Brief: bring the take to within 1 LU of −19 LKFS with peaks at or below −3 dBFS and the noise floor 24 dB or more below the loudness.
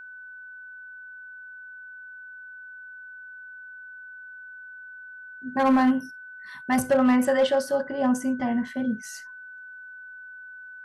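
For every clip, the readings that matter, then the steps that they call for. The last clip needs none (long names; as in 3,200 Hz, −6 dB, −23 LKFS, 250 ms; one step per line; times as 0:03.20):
share of clipped samples 0.4%; peaks flattened at −14.5 dBFS; interfering tone 1,500 Hz; level of the tone −40 dBFS; integrated loudness −23.5 LKFS; sample peak −14.5 dBFS; target loudness −19.0 LKFS
→ clipped peaks rebuilt −14.5 dBFS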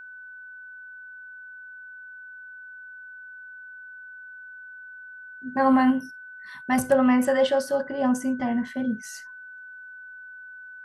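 share of clipped samples 0.0%; interfering tone 1,500 Hz; level of the tone −40 dBFS
→ notch filter 1,500 Hz, Q 30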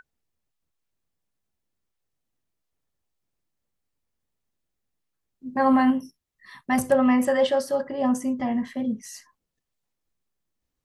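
interfering tone none found; integrated loudness −23.5 LKFS; sample peak −8.0 dBFS; target loudness −19.0 LKFS
→ level +4.5 dB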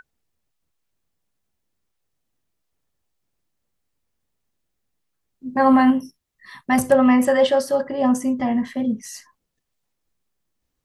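integrated loudness −19.0 LKFS; sample peak −3.5 dBFS; background noise floor −77 dBFS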